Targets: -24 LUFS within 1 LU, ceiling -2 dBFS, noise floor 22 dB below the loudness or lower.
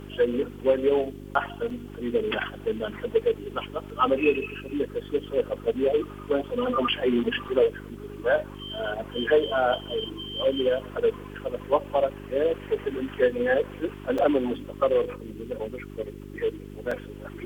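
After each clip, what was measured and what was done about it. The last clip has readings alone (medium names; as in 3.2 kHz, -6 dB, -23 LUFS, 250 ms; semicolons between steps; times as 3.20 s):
dropouts 4; longest dropout 4.1 ms; hum 50 Hz; highest harmonic 400 Hz; hum level -38 dBFS; loudness -27.0 LUFS; peak level -9.0 dBFS; loudness target -24.0 LUFS
-> interpolate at 1.70/7.48/14.18/16.91 s, 4.1 ms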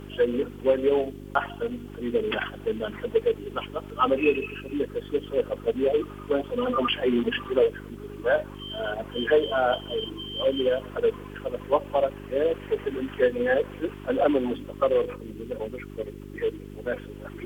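dropouts 0; hum 50 Hz; highest harmonic 400 Hz; hum level -38 dBFS
-> de-hum 50 Hz, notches 8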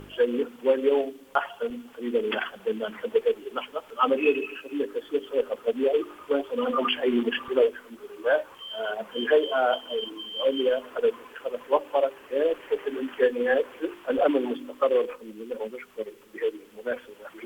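hum not found; loudness -27.0 LUFS; peak level -9.5 dBFS; loudness target -24.0 LUFS
-> trim +3 dB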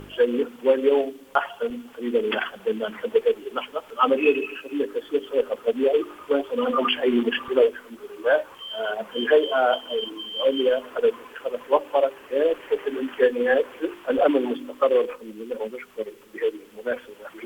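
loudness -24.0 LUFS; peak level -6.5 dBFS; noise floor -48 dBFS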